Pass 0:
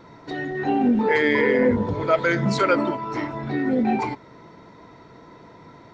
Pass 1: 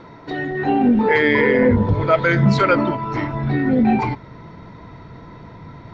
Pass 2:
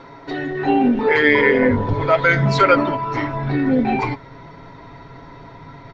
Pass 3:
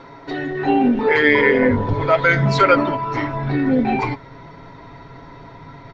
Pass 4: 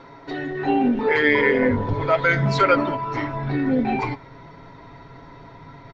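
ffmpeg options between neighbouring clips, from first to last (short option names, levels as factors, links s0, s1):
-af "lowpass=4400,asubboost=boost=4:cutoff=170,areverse,acompressor=mode=upward:threshold=0.0112:ratio=2.5,areverse,volume=1.68"
-af "equalizer=f=140:w=0.65:g=-7,aecho=1:1:7.3:0.55,volume=1.19"
-af anull
-filter_complex "[0:a]asplit=2[s0][s1];[s1]adelay=190,highpass=300,lowpass=3400,asoftclip=type=hard:threshold=0.282,volume=0.0316[s2];[s0][s2]amix=inputs=2:normalize=0,volume=0.668"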